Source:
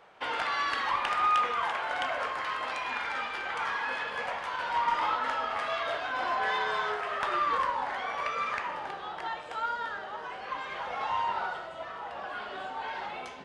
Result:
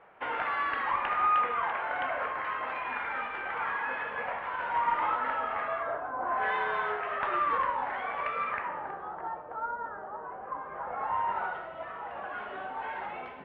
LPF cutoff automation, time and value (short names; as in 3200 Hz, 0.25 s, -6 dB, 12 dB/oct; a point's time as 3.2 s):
LPF 24 dB/oct
5.57 s 2400 Hz
6.19 s 1100 Hz
6.45 s 2600 Hz
8.39 s 2600 Hz
9.33 s 1300 Hz
10.67 s 1300 Hz
11.5 s 2500 Hz